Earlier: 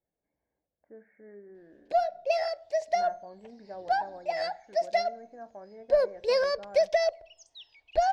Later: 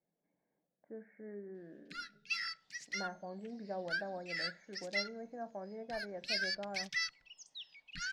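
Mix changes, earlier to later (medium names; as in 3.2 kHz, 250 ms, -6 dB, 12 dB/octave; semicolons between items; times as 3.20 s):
first sound: add brick-wall FIR band-stop 280–1200 Hz; master: add resonant low shelf 120 Hz -11.5 dB, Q 3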